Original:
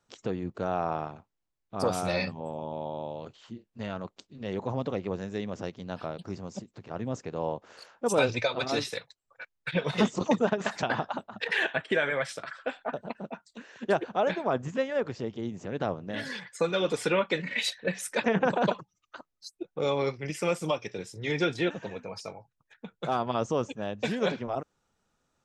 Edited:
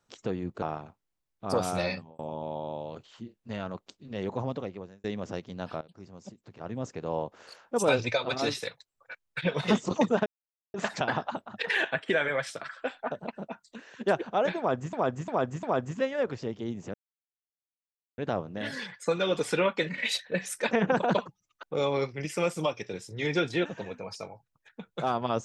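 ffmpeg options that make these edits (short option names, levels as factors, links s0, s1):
-filter_complex "[0:a]asplit=11[s0][s1][s2][s3][s4][s5][s6][s7][s8][s9][s10];[s0]atrim=end=0.622[s11];[s1]atrim=start=0.918:end=2.49,asetpts=PTS-STARTPTS,afade=t=out:st=1.182:d=0.39[s12];[s2]atrim=start=2.49:end=5.34,asetpts=PTS-STARTPTS,afade=t=in:d=0.004:c=hsin,afade=t=out:st=2.2:d=0.65[s13];[s3]atrim=start=5.34:end=6.11,asetpts=PTS-STARTPTS,afade=t=in:d=0.004:c=hsin,afade=t=out:st=0.766:d=0.004:c=hsin:silence=0.141254[s14];[s4]atrim=start=6.11:end=10.56,asetpts=PTS-STARTPTS,afade=t=in:d=1.24:silence=0.141254,afade=t=out:st=4.446:d=0.004:c=hsin,apad=pad_dur=0.48[s15];[s5]atrim=start=10.56:end=14.752,asetpts=PTS-STARTPTS,afade=t=in:d=0.004:c=hsin[s16];[s6]atrim=start=14.398:end=14.752[s17];[s7]atrim=start=14.398:end=14.752[s18];[s8]atrim=start=14.398:end=15.71,asetpts=PTS-STARTPTS,afade=t=out:st=1.308:d=0.004:c=hsin,apad=pad_dur=1.24[s19];[s9]atrim=start=15.71:end=19.162,asetpts=PTS-STARTPTS,afade=t=in:d=0.004:c=hsin[s20];[s10]atrim=start=19.678[s21];[s12][s13][s14][s15][s16]concat=n=5:v=0:a=1[s22];[s11][s22]acrossfade=d=0.004:c1=hsin:c2=hsin[s23];[s23][s17]acrossfade=d=0.004:c1=hsin:c2=hsin[s24];[s24][s18]acrossfade=d=0.004:c1=hsin:c2=hsin[s25];[s19][s20]concat=n=2:v=0:a=1[s26];[s25][s26]acrossfade=d=0.004:c1=hsin:c2=hsin[s27];[s27][s21]acrossfade=d=0.004:c1=hsin:c2=hsin"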